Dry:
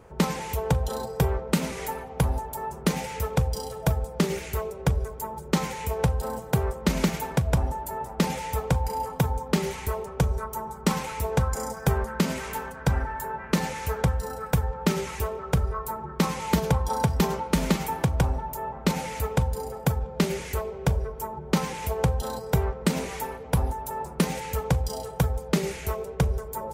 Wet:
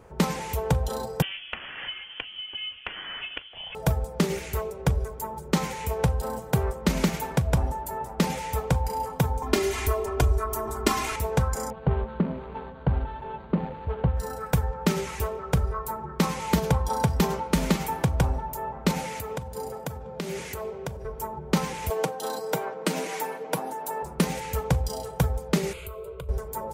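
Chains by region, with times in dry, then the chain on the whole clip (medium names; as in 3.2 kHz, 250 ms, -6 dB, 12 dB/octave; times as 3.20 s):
1.22–3.75 s: inverse Chebyshev high-pass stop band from 260 Hz, stop band 60 dB + frequency inversion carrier 3.9 kHz + three bands compressed up and down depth 100%
9.42–11.16 s: comb 2.9 ms, depth 100% + upward compressor, threshold -22 dBFS
11.70–14.17 s: median filter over 25 samples + Butterworth band-stop 5.3 kHz, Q 5 + distance through air 400 m
19.04–21.05 s: compression 12:1, threshold -27 dBFS + high-pass 98 Hz
21.90–24.03 s: high-pass 220 Hz 24 dB/octave + comb 6.4 ms, depth 55% + three bands compressed up and down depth 40%
25.73–26.29 s: static phaser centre 1.2 kHz, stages 8 + compression 16:1, threshold -33 dBFS
whole clip: none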